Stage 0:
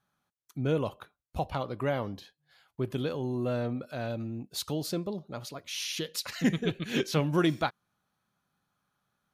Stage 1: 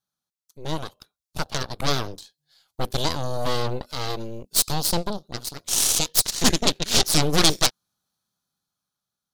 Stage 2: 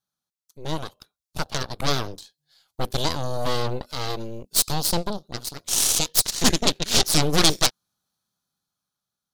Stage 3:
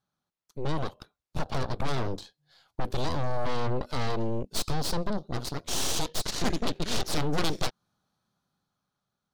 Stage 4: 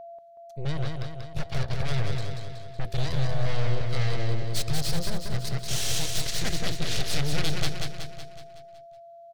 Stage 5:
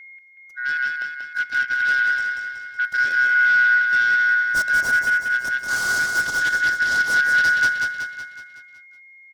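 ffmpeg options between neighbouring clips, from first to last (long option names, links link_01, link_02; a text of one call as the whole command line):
ffmpeg -i in.wav -af "dynaudnorm=framelen=300:gausssize=9:maxgain=8dB,aeval=exprs='0.501*(cos(1*acos(clip(val(0)/0.501,-1,1)))-cos(1*PI/2))+0.112*(cos(3*acos(clip(val(0)/0.501,-1,1)))-cos(3*PI/2))+0.141*(cos(8*acos(clip(val(0)/0.501,-1,1)))-cos(8*PI/2))':channel_layout=same,highshelf=frequency=3200:width_type=q:width=1.5:gain=10.5,volume=-2.5dB" out.wav
ffmpeg -i in.wav -af anull out.wav
ffmpeg -i in.wav -af "lowpass=frequency=1400:poles=1,acompressor=threshold=-23dB:ratio=6,asoftclip=type=tanh:threshold=-28dB,volume=8dB" out.wav
ffmpeg -i in.wav -filter_complex "[0:a]equalizer=frequency=125:width_type=o:width=1:gain=8,equalizer=frequency=250:width_type=o:width=1:gain=-12,equalizer=frequency=1000:width_type=o:width=1:gain=-11,equalizer=frequency=2000:width_type=o:width=1:gain=5,aeval=exprs='val(0)+0.01*sin(2*PI*680*n/s)':channel_layout=same,asplit=2[link_01][link_02];[link_02]aecho=0:1:186|372|558|744|930|1116|1302:0.631|0.341|0.184|0.0994|0.0537|0.029|0.0156[link_03];[link_01][link_03]amix=inputs=2:normalize=0" out.wav
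ffmpeg -i in.wav -af "afftfilt=real='real(if(lt(b,272),68*(eq(floor(b/68),0)*3+eq(floor(b/68),1)*0+eq(floor(b/68),2)*1+eq(floor(b/68),3)*2)+mod(b,68),b),0)':imag='imag(if(lt(b,272),68*(eq(floor(b/68),0)*3+eq(floor(b/68),1)*0+eq(floor(b/68),2)*1+eq(floor(b/68),3)*2)+mod(b,68),b),0)':win_size=2048:overlap=0.75" out.wav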